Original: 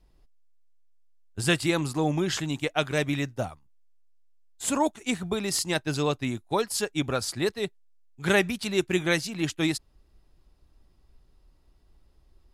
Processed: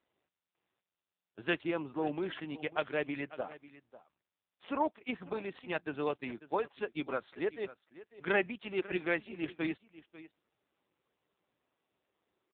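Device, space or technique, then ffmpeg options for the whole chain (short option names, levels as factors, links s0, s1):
satellite phone: -filter_complex "[0:a]asettb=1/sr,asplit=3[s0][s1][s2];[s0]atrim=end=1.634[s3];[s1]atrim=start=1.63:end=2.22,asetpts=PTS-STARTPTS,afade=t=in:d=0.004:c=qsin,afade=t=out:st=0.586:d=0.004:c=qsin,adynamicequalizer=threshold=0.01:dfrequency=1900:dqfactor=1:tfrequency=1900:tqfactor=1:attack=5:release=100:ratio=0.375:range=2.5:mode=cutabove:tftype=bell[s4];[s2]atrim=start=2.216[s5];[s3][s4]acrossfade=d=0.004:c1=hsin:c2=qsin[s6];[s6][s5]acrossfade=d=0.004:c1=qsin:c2=hsin,highpass=310,lowpass=3100,aecho=1:1:545:0.141,volume=0.562" -ar 8000 -c:a libopencore_amrnb -b:a 5900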